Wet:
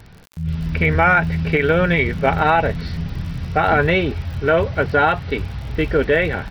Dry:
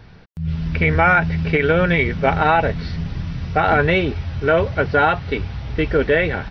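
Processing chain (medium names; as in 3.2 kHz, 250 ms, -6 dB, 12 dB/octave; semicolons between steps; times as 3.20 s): crackle 69 per s -32 dBFS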